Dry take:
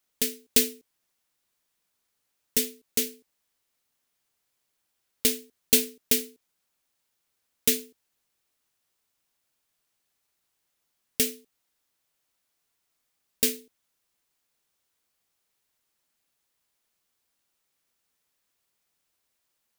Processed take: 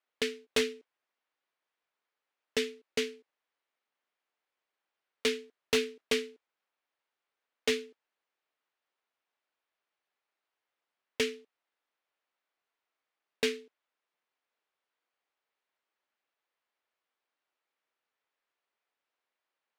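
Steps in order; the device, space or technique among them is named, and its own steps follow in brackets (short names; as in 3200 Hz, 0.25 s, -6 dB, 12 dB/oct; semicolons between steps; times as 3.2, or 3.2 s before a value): walkie-talkie (BPF 420–2500 Hz; hard clip -27 dBFS, distortion -12 dB; gate -55 dBFS, range -8 dB); gain +6 dB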